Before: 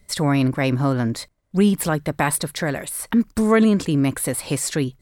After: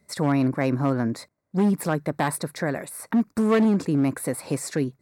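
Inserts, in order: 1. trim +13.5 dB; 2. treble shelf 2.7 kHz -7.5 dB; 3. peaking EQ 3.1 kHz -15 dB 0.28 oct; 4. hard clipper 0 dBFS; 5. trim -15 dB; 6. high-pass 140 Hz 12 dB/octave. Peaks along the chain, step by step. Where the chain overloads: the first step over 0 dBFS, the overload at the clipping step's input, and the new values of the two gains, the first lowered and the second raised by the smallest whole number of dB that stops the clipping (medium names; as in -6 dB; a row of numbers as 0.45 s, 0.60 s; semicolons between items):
+7.0 dBFS, +5.5 dBFS, +5.5 dBFS, 0.0 dBFS, -15.0 dBFS, -9.5 dBFS; step 1, 5.5 dB; step 1 +7.5 dB, step 5 -9 dB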